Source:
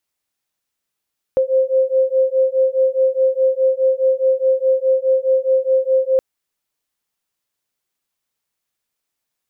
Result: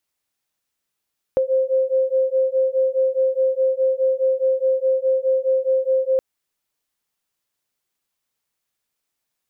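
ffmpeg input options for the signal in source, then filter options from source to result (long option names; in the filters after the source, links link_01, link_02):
-f lavfi -i "aevalsrc='0.158*(sin(2*PI*523*t)+sin(2*PI*527.8*t))':duration=4.82:sample_rate=44100"
-af "acompressor=threshold=-16dB:ratio=6"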